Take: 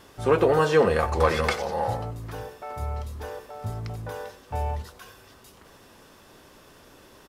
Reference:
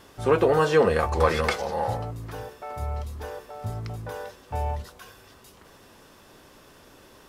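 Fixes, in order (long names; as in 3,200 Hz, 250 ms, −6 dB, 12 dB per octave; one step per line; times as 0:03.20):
clipped peaks rebuilt −9 dBFS
echo removal 91 ms −17 dB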